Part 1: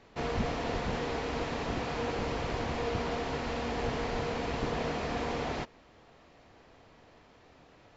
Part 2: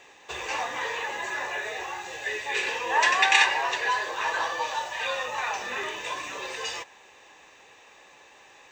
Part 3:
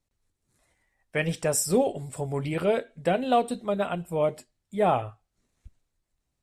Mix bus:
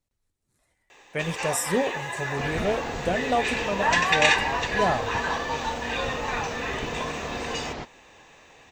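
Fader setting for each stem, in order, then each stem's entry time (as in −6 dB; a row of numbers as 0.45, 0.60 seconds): 0.0, −0.5, −2.0 decibels; 2.20, 0.90, 0.00 seconds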